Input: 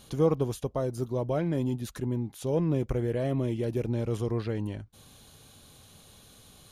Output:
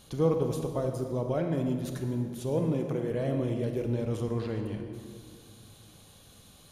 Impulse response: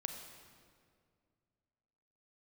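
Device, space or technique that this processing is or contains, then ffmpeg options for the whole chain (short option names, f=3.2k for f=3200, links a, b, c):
stairwell: -filter_complex "[0:a]asettb=1/sr,asplit=3[a][b][c];[a]atrim=end=2.594[d];[b]atrim=start=2.59:end=3.11,asetpts=PTS-STARTPTS,afade=t=in:d=0.004:c=qsin,afade=t=out:st=0.516:d=0.004:c=qsin,highpass=f=150:w=0.5412,highpass=f=150:w=1.3066[e];[c]atrim=start=3.106[f];[d][e]acrossfade=d=0.004:c1=hsin:c2=qsin[g];[g][f]acrossfade=d=0.004:c1=qsin:c2=hsin[h];[1:a]atrim=start_sample=2205[i];[h][i]afir=irnorm=-1:irlink=0"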